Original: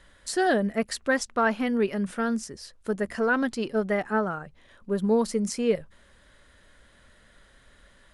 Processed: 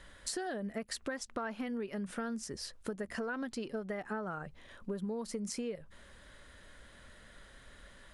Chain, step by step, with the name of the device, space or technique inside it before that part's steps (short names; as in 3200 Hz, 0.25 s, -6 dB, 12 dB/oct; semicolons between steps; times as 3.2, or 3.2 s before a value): serial compression, leveller first (compressor 2.5:1, threshold -28 dBFS, peak gain reduction 7.5 dB; compressor 5:1, threshold -37 dBFS, peak gain reduction 12 dB); gain +1 dB